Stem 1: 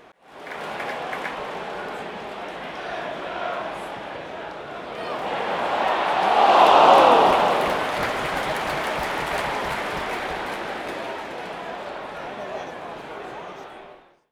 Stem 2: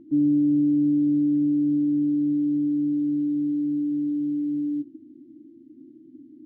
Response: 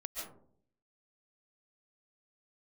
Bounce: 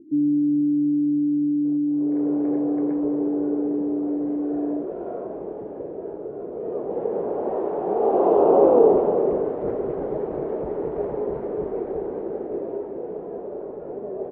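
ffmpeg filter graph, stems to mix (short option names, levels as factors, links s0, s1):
-filter_complex "[0:a]adelay=1650,volume=0.794[s0];[1:a]volume=0.531[s1];[s0][s1]amix=inputs=2:normalize=0,lowpass=f=420:t=q:w=4.3"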